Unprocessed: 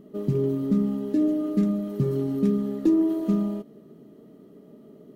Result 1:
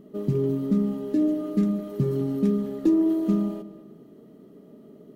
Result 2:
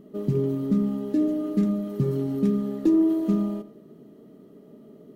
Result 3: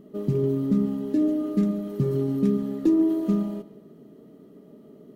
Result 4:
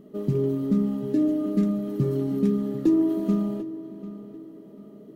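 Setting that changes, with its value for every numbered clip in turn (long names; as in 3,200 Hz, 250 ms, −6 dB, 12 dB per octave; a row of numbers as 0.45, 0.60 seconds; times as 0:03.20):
feedback echo with a low-pass in the loop, delay time: 208, 87, 140, 743 milliseconds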